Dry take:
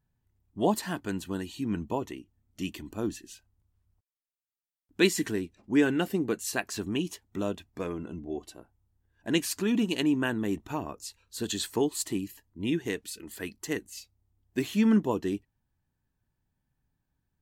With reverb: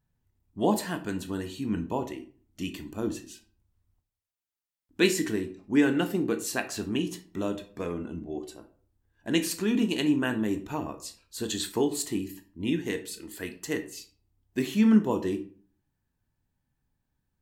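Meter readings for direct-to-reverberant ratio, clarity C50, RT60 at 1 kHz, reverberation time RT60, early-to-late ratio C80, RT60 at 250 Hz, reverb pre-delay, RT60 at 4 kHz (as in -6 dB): 7.0 dB, 12.5 dB, 0.45 s, 0.45 s, 17.5 dB, 0.55 s, 16 ms, 0.30 s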